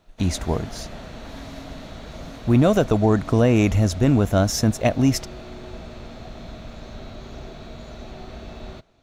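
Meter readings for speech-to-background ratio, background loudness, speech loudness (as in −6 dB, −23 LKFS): 18.5 dB, −38.5 LKFS, −20.0 LKFS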